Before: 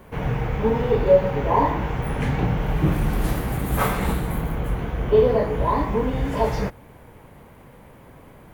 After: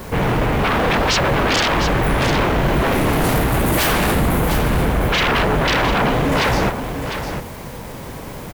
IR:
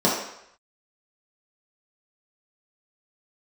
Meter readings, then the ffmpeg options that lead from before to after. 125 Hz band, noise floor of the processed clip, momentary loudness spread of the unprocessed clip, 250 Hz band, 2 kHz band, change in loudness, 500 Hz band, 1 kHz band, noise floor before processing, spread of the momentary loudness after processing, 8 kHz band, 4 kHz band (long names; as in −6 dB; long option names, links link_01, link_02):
+4.0 dB, −32 dBFS, 9 LU, +6.0 dB, +13.5 dB, +5.0 dB, +1.0 dB, +6.5 dB, −47 dBFS, 13 LU, +14.0 dB, +18.0 dB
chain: -filter_complex "[0:a]aeval=exprs='0.562*sin(PI/2*8.91*val(0)/0.562)':channel_layout=same,acrusher=bits=4:mix=0:aa=0.000001,asplit=2[link_01][link_02];[link_02]aecho=0:1:704:0.398[link_03];[link_01][link_03]amix=inputs=2:normalize=0,volume=-9dB"